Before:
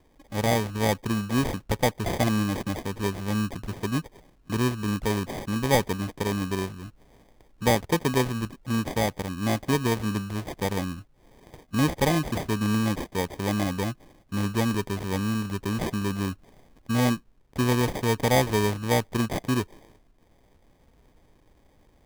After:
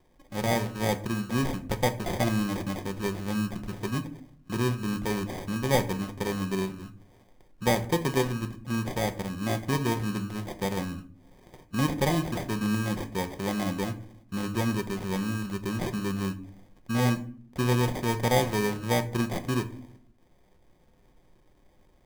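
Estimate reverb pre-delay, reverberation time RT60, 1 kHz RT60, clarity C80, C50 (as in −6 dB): 5 ms, 0.50 s, 0.45 s, 19.0 dB, 15.0 dB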